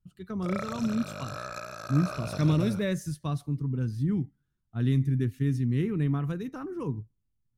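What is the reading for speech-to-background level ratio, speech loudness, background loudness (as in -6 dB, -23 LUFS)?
8.5 dB, -29.5 LUFS, -38.0 LUFS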